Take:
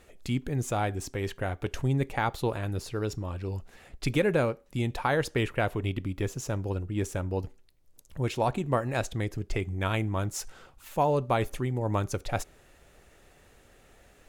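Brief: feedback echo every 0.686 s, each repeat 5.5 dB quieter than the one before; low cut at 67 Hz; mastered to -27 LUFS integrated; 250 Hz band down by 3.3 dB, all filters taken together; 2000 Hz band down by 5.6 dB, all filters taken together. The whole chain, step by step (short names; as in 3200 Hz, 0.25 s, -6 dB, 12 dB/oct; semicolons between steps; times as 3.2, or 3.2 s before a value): HPF 67 Hz; bell 250 Hz -4.5 dB; bell 2000 Hz -7.5 dB; feedback echo 0.686 s, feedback 53%, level -5.5 dB; gain +4.5 dB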